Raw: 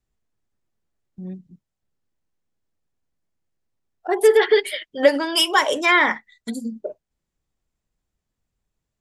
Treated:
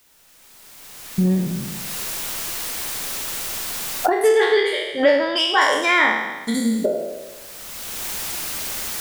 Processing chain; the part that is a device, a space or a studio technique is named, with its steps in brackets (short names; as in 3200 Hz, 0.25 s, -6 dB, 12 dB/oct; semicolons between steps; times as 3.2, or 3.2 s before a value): spectral trails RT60 0.89 s; cheap recorder with automatic gain (white noise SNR 34 dB; recorder AGC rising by 19 dB/s); 4.28–5.6 LPF 8000 Hz -> 3800 Hz 12 dB/oct; gain -3 dB